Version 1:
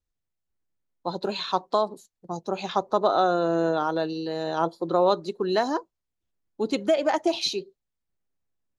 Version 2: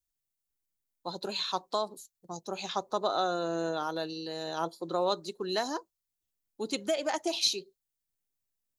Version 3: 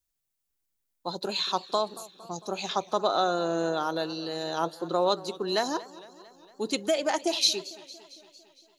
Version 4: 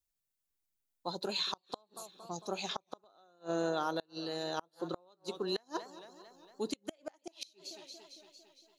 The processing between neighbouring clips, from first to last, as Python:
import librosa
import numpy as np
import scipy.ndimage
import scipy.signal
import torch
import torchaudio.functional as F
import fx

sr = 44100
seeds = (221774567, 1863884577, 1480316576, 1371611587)

y1 = librosa.effects.preemphasis(x, coef=0.8, zi=[0.0])
y1 = y1 * 10.0 ** (5.0 / 20.0)
y2 = fx.echo_warbled(y1, sr, ms=227, feedback_pct=63, rate_hz=2.8, cents=131, wet_db=-19)
y2 = y2 * 10.0 ** (4.0 / 20.0)
y3 = fx.gate_flip(y2, sr, shuts_db=-17.0, range_db=-34)
y3 = y3 * 10.0 ** (-5.0 / 20.0)